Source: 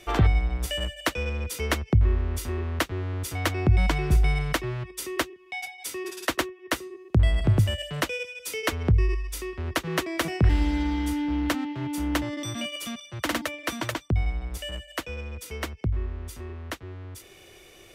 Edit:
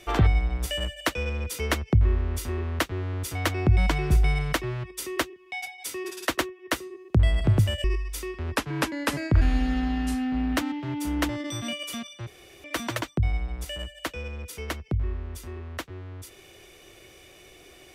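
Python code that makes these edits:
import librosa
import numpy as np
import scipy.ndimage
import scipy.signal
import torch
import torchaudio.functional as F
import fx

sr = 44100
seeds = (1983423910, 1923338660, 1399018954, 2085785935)

y = fx.edit(x, sr, fx.cut(start_s=7.84, length_s=1.19),
    fx.speed_span(start_s=9.75, length_s=1.75, speed=0.87),
    fx.room_tone_fill(start_s=13.2, length_s=0.37), tone=tone)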